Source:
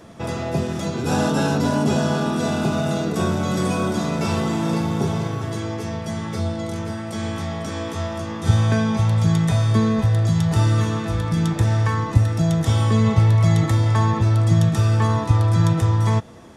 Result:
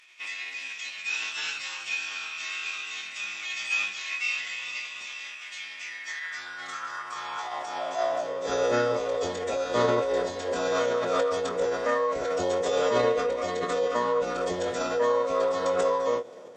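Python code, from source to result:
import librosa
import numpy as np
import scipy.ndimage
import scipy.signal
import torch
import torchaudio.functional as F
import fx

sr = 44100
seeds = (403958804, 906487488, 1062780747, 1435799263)

y = fx.doubler(x, sr, ms=22.0, db=-6.0)
y = fx.filter_sweep_highpass(y, sr, from_hz=2400.0, to_hz=480.0, start_s=5.74, end_s=8.62, q=5.8)
y = fx.pitch_keep_formants(y, sr, semitones=-10.5)
y = y * 10.0 ** (-5.5 / 20.0)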